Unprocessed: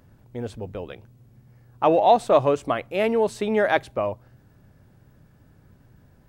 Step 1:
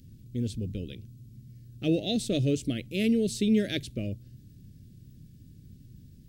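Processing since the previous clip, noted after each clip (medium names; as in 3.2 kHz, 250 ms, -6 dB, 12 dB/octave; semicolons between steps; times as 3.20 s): Chebyshev band-stop 240–3900 Hz, order 2; trim +4.5 dB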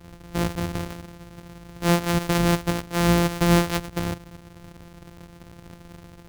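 sorted samples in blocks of 256 samples; trim +5.5 dB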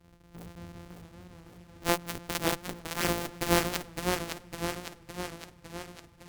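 Chebyshev shaper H 3 -7 dB, 5 -29 dB, 7 -39 dB, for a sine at -9.5 dBFS; modulated delay 558 ms, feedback 63%, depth 84 cents, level -4.5 dB; trim -2 dB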